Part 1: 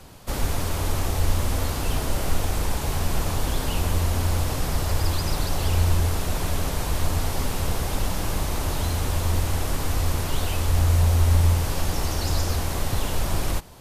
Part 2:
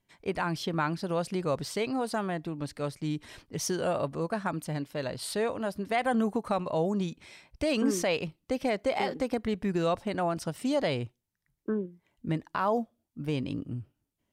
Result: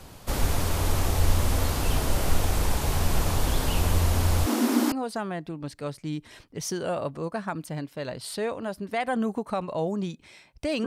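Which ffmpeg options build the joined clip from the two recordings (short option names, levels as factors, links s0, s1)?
-filter_complex "[0:a]asettb=1/sr,asplit=3[s0][s1][s2];[s0]atrim=end=4.464[s3];[s1]atrim=start=4.46:end=4.92,asetpts=PTS-STARTPTS,afade=t=in:d=0.004:c=qsin,afade=t=out:st=0.456:d=0.004:c=qsin,afreqshift=220[s4];[s2]atrim=start=4.916[s5];[s3][s4]acrossfade=d=0.004:c1=hsin:c2=qsin[s6];[s6][s5]acrossfade=d=0.004:c1=qsin:c2=hsin,apad=whole_dur=10.86,atrim=end=10.86,atrim=end=4.922[s7];[1:a]atrim=start=1.898:end=7.84[s8];[s7][s8]acrossfade=d=0.004:c1=hsin:c2=hsin"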